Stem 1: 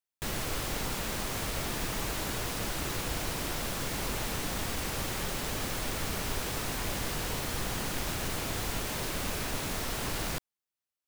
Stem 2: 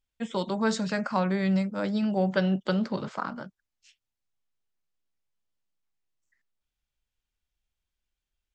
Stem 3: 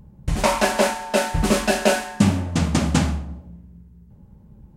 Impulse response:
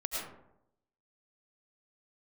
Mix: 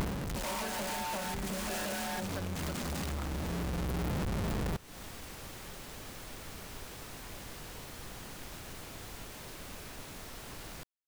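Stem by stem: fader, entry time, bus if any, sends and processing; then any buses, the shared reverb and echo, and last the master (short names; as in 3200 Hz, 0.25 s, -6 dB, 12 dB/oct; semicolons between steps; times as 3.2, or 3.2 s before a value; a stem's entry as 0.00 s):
-12.0 dB, 0.45 s, no send, dry
-12.0 dB, 0.00 s, no send, dry
+2.0 dB, 0.00 s, no send, infinite clipping; auto duck -12 dB, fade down 0.25 s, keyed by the second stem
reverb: off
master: compressor 8:1, threshold -34 dBFS, peak gain reduction 12.5 dB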